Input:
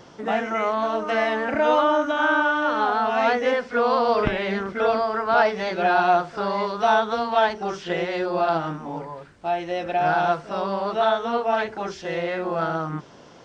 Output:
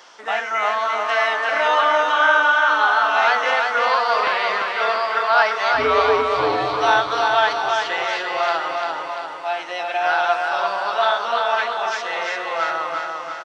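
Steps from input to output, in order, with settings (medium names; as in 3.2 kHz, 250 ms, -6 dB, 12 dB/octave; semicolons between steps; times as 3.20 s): high-pass 1 kHz 12 dB/octave; 5.74–6.74 s: frequency shift -280 Hz; feedback delay 344 ms, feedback 55%, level -4 dB; trim +6.5 dB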